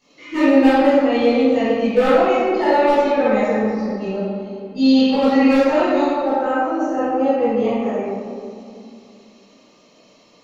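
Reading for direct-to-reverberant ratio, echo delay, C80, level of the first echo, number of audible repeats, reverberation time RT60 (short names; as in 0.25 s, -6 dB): -15.0 dB, none, -2.0 dB, none, none, 2.6 s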